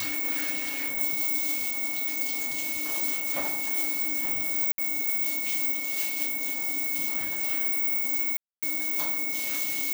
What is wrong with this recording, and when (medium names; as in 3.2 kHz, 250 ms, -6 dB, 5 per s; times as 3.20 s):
whine 2.2 kHz -34 dBFS
4.72–4.78 s: dropout 62 ms
8.37–8.63 s: dropout 256 ms